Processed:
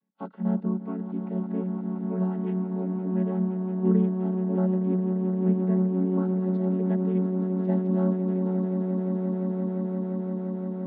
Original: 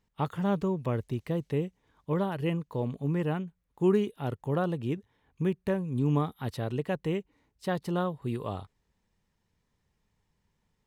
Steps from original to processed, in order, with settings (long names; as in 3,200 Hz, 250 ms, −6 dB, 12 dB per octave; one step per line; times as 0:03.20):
channel vocoder with a chord as carrier minor triad, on F#3
high-frequency loss of the air 320 metres
echo that builds up and dies away 173 ms, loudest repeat 8, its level −12 dB